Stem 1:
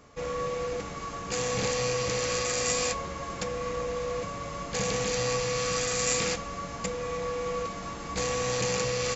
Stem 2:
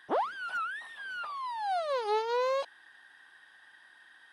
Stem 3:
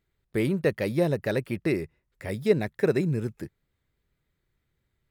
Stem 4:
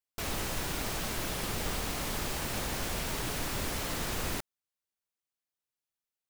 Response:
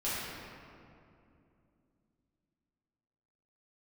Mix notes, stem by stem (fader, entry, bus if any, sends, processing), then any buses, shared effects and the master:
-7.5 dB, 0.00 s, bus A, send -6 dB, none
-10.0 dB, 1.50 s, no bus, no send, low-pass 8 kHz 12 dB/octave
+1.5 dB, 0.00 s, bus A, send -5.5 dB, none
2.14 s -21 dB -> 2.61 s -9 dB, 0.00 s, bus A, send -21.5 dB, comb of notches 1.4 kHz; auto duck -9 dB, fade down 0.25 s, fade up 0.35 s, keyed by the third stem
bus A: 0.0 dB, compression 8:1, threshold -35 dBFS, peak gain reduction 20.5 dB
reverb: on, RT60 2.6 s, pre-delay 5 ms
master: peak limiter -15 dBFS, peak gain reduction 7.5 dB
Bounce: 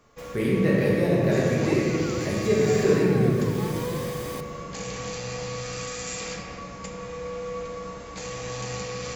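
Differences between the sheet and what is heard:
stem 4 -21.0 dB -> -10.0 dB; master: missing peak limiter -15 dBFS, peak gain reduction 7.5 dB

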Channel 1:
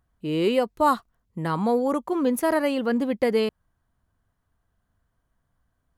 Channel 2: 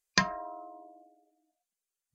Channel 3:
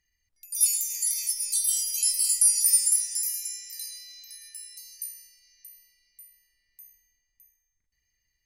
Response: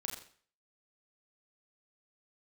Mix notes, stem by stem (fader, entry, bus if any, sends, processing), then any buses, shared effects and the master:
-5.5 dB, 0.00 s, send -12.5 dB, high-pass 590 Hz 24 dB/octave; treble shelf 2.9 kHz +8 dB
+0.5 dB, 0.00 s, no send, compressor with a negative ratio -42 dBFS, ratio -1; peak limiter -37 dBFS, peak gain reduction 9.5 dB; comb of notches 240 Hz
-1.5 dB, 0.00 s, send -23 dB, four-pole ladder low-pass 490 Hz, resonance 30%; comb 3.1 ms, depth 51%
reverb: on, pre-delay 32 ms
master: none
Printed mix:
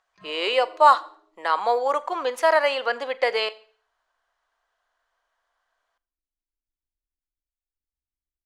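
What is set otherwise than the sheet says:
stem 1 -5.5 dB -> +5.0 dB; stem 3 -1.5 dB -> -8.0 dB; master: extra distance through air 130 m

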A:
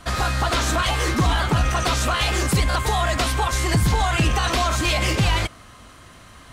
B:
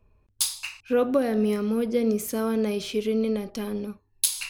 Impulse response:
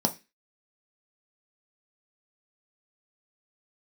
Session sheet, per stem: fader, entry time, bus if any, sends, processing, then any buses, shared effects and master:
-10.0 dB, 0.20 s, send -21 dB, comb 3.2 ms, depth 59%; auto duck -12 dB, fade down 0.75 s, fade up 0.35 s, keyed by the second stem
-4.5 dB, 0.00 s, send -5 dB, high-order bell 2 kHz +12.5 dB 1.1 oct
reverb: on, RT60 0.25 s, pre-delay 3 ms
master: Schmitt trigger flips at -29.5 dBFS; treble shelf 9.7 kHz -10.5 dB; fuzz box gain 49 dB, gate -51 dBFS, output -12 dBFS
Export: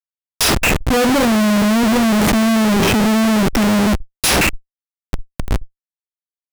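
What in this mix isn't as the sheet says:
stem A -10.0 dB -> -21.0 dB; master: missing treble shelf 9.7 kHz -10.5 dB

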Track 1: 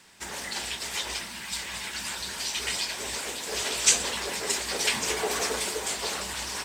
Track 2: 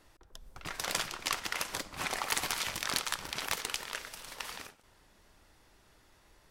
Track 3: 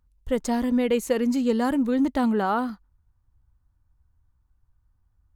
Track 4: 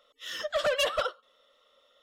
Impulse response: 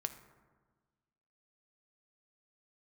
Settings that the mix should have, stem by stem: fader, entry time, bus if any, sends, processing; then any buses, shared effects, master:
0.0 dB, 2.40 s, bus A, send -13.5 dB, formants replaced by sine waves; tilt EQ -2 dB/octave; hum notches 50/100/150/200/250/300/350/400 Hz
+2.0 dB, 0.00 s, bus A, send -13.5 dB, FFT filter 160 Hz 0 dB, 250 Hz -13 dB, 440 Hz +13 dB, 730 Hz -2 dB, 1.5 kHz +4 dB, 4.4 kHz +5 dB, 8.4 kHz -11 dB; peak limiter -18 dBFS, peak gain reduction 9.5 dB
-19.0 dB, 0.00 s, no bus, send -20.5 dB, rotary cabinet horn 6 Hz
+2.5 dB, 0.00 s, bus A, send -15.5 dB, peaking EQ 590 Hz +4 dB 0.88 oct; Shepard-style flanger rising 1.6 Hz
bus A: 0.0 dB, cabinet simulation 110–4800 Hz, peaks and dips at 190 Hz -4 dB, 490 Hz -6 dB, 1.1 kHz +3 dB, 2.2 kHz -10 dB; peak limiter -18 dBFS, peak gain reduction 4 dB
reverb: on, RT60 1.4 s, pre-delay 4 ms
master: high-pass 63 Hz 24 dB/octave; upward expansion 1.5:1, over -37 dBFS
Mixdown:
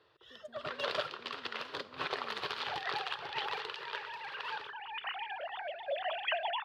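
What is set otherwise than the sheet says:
stem 3 -19.0 dB -> -28.5 dB; stem 4 +2.5 dB -> -5.0 dB

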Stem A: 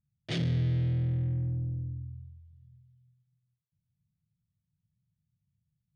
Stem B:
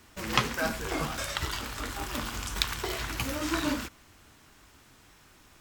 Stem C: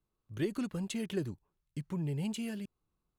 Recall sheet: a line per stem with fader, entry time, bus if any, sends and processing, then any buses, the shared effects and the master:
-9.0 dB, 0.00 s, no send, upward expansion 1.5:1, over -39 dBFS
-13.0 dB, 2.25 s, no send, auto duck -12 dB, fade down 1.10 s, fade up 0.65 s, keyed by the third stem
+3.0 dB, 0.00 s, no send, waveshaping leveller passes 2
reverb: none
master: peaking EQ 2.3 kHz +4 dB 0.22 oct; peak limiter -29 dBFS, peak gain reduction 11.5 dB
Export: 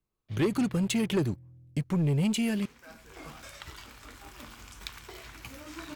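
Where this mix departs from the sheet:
stem A -9.0 dB -> -19.0 dB; master: missing peak limiter -29 dBFS, peak gain reduction 11.5 dB

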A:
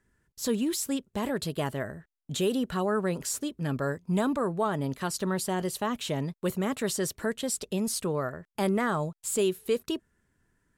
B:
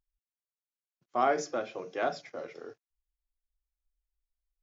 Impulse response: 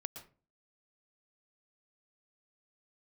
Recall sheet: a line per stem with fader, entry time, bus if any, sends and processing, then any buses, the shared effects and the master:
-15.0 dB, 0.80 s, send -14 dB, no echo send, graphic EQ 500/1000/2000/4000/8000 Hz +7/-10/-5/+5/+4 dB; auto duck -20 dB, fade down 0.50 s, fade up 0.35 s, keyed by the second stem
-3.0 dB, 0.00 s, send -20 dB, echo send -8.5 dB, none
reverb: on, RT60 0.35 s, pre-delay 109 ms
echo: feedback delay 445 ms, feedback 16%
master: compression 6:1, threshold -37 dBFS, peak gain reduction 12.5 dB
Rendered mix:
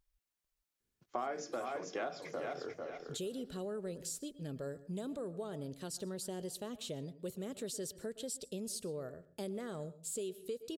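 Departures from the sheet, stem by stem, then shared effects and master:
stem A: send -14 dB -> -5.5 dB; stem B -3.0 dB -> +5.0 dB

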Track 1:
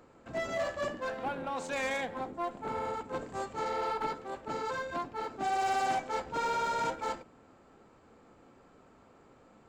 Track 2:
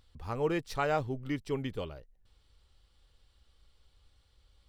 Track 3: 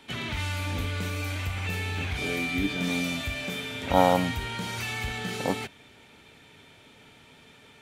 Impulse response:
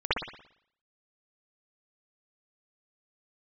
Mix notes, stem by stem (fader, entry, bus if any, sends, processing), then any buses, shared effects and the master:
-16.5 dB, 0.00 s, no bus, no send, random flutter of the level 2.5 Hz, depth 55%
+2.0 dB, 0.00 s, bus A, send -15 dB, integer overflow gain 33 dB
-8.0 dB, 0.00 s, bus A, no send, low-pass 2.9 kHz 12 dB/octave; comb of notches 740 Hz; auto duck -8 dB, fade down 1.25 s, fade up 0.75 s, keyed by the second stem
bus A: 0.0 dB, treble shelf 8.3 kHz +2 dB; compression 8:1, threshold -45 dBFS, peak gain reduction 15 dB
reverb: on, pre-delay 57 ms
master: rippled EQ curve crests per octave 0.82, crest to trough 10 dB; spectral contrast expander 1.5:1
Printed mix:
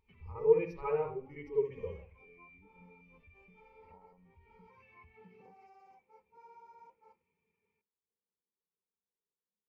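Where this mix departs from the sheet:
stem 1: missing random flutter of the level 2.5 Hz, depth 55%; stem 2: missing integer overflow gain 33 dB; stem 3: missing comb of notches 740 Hz

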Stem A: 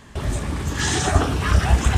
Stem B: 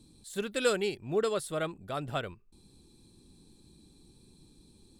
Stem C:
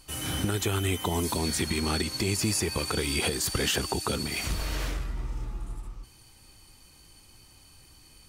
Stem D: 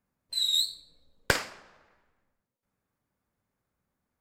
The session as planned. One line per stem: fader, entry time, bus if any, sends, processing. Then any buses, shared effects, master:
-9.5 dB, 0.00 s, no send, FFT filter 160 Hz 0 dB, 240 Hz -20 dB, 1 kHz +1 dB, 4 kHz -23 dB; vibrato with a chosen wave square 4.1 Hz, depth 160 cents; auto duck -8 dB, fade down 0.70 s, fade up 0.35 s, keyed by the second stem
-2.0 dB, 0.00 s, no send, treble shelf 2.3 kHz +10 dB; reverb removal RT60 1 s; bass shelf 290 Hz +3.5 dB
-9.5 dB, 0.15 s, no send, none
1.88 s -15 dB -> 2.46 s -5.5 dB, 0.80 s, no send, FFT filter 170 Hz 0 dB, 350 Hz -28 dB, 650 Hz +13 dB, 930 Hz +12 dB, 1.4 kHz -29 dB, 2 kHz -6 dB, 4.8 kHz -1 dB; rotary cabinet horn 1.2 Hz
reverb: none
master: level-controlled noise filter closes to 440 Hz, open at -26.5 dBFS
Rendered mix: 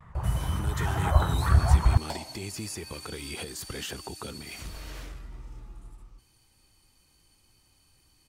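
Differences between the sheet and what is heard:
stem A -9.5 dB -> -2.5 dB; stem B: muted; master: missing level-controlled noise filter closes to 440 Hz, open at -26.5 dBFS

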